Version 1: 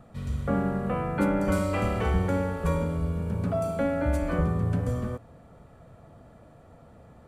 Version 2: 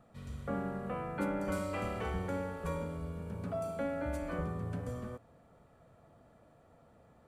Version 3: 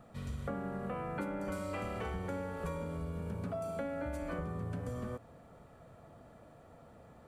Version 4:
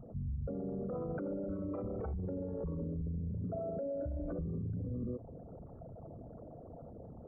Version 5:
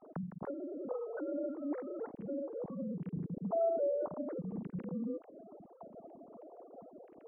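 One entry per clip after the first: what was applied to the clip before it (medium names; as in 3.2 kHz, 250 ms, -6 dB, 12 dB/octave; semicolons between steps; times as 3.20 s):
bass shelf 190 Hz -6.5 dB; trim -8 dB
compression, threshold -41 dBFS, peak gain reduction 11 dB; trim +5.5 dB
resonances exaggerated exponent 3; peak limiter -39 dBFS, peak gain reduction 11 dB; trim +7 dB
formants replaced by sine waves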